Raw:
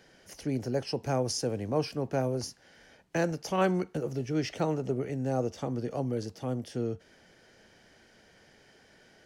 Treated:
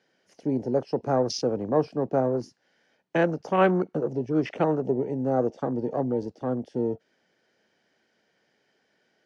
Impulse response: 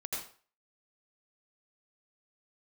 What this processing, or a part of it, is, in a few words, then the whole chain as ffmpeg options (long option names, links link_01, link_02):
over-cleaned archive recording: -af "highpass=180,lowpass=6100,afwtdn=0.00891,volume=6.5dB"